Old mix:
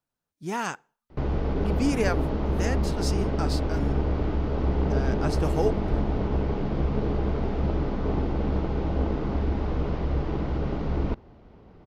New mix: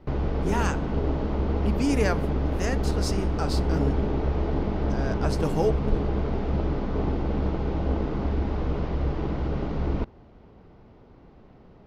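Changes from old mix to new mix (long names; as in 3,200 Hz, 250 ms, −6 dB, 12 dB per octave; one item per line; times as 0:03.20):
background: entry −1.10 s
reverb: on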